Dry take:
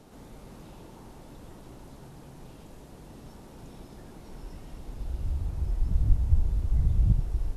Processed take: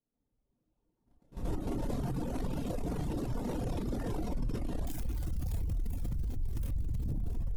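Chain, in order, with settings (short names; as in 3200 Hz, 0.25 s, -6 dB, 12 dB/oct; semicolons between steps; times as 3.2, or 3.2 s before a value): 4.87–7.11 switching spikes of -22.5 dBFS; recorder AGC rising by 8.5 dB/s; gate -30 dBFS, range -54 dB; diffused feedback echo 0.482 s, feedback 48%, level -10 dB; one-sided clip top -28 dBFS; low shelf 490 Hz +10 dB; notches 50/100/150/200/250 Hz; reverb, pre-delay 4 ms, DRR -2.5 dB; limiter -29.5 dBFS, peak gain reduction 31 dB; reverb removal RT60 1.8 s; gain +5 dB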